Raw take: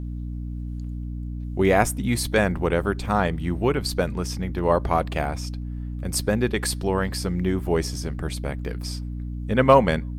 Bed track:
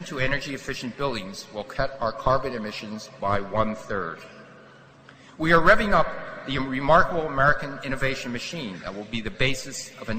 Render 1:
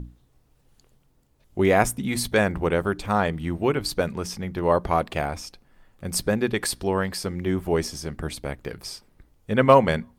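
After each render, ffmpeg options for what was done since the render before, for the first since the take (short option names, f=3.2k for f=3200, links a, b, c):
-af "bandreject=f=60:t=h:w=6,bandreject=f=120:t=h:w=6,bandreject=f=180:t=h:w=6,bandreject=f=240:t=h:w=6,bandreject=f=300:t=h:w=6"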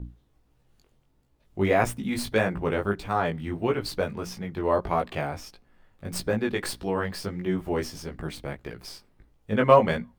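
-filter_complex "[0:a]flanger=delay=16.5:depth=4.2:speed=1.6,acrossover=split=540|4700[a][b][c];[c]aeval=exprs='max(val(0),0)':c=same[d];[a][b][d]amix=inputs=3:normalize=0"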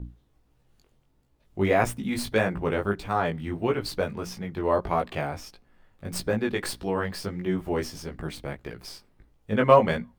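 -af anull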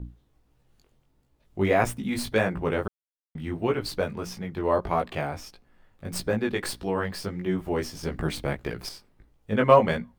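-filter_complex "[0:a]asettb=1/sr,asplit=3[a][b][c];[a]atrim=end=8.034[d];[b]atrim=start=8.03:end=8.89,asetpts=PTS-STARTPTS,afade=t=in:d=0.004:c=qsin,afade=t=out:st=0.856:d=0.004:c=qsin,acontrast=48[e];[c]atrim=start=8.886[f];[d][e]acrossfade=d=0.004:c1=hsin:c2=qsin[g];[g][f]acrossfade=d=0.004:c1=qsin:c2=hsin,asplit=3[h][i][j];[h]atrim=end=2.88,asetpts=PTS-STARTPTS,afade=t=out:st=2.876:d=0.004:c=hsin[k];[i]atrim=start=2.88:end=3.35,asetpts=PTS-STARTPTS,volume=0[l];[j]atrim=start=3.35,asetpts=PTS-STARTPTS,afade=t=in:d=0.004:c=hsin[m];[k][l][m]concat=n=3:v=0:a=1"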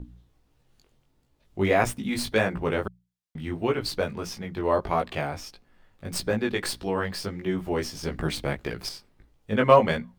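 -af "equalizer=f=4.4k:w=0.63:g=3.5,bandreject=f=60:t=h:w=6,bandreject=f=120:t=h:w=6,bandreject=f=180:t=h:w=6"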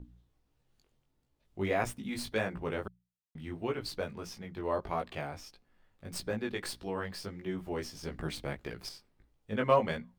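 -af "volume=-9dB"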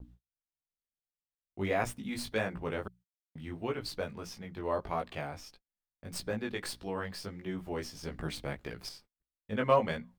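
-af "agate=range=-34dB:threshold=-56dB:ratio=16:detection=peak,equalizer=f=370:t=o:w=0.21:g=-3"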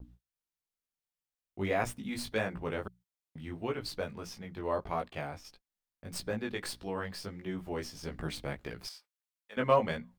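-filter_complex "[0:a]asettb=1/sr,asplit=3[a][b][c];[a]atrim=end=4.844[d];[b]atrim=start=4.84:end=5.45,asetpts=PTS-STARTPTS,afade=t=in:d=0.004:c=qsin,afade=t=out:st=0.606:d=0.004:c=qsin,agate=range=-33dB:threshold=-45dB:ratio=3:release=100:detection=peak[e];[c]atrim=start=5.446[f];[d][e]acrossfade=d=0.004:c1=hsin:c2=qsin[g];[g][f]acrossfade=d=0.004:c1=qsin:c2=hsin,asettb=1/sr,asplit=3[h][i][j];[h]atrim=end=8.874[k];[i]atrim=start=8.87:end=9.57,asetpts=PTS-STARTPTS,afade=t=in:d=0.004:c=qsin,afade=t=out:st=0.696:d=0.004:c=qsin,highpass=920[l];[j]atrim=start=9.566[m];[k][l]acrossfade=d=0.004:c1=hsin:c2=qsin[n];[n][m]acrossfade=d=0.004:c1=qsin:c2=hsin"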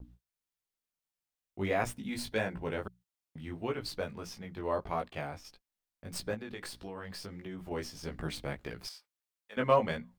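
-filter_complex "[0:a]asettb=1/sr,asplit=3[a][b][c];[a]atrim=end=1.954[d];[b]atrim=start=1.95:end=2.78,asetpts=PTS-STARTPTS,afade=t=in:d=0.004:c=qsin,afade=t=out:st=0.826:d=0.004:c=qsin,asuperstop=centerf=1200:order=4:qfactor=7.4[e];[c]atrim=start=2.776[f];[d][e]acrossfade=d=0.004:c1=hsin:c2=qsin[g];[g][f]acrossfade=d=0.004:c1=qsin:c2=hsin,asettb=1/sr,asplit=3[h][i][j];[h]atrim=end=6.344[k];[i]atrim=start=6.34:end=7.71,asetpts=PTS-STARTPTS,afade=t=in:d=0.004:c=qsin,afade=t=out:st=1.366:d=0.004:c=qsin,acompressor=threshold=-38dB:ratio=6:attack=3.2:release=140:knee=1:detection=peak[l];[j]atrim=start=7.706[m];[k][l]acrossfade=d=0.004:c1=hsin:c2=qsin[n];[n][m]acrossfade=d=0.004:c1=qsin:c2=hsin"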